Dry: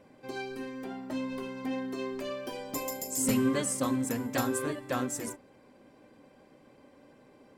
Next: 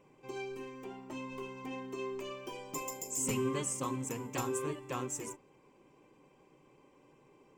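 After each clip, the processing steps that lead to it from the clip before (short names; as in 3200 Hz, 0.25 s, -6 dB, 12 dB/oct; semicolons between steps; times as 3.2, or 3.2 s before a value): ripple EQ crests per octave 0.72, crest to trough 10 dB; gain -6 dB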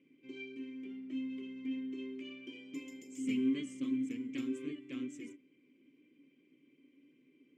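vowel filter i; gain +7.5 dB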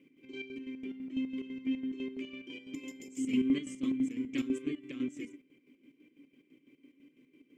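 chopper 6 Hz, depth 60%, duty 50%; gain +6 dB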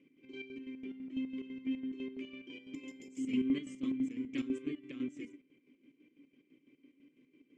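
air absorption 60 m; gain -3 dB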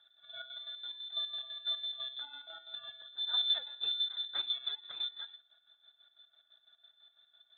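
inverted band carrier 3800 Hz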